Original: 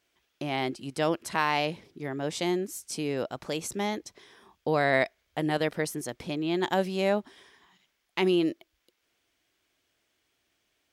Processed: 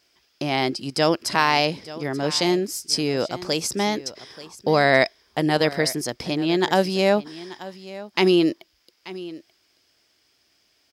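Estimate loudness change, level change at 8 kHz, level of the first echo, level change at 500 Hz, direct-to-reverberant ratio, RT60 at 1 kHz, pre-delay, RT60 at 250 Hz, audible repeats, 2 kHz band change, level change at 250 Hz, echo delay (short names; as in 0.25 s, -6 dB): +7.5 dB, +9.0 dB, -17.0 dB, +7.0 dB, none, none, none, none, 1, +7.5 dB, +7.0 dB, 0.884 s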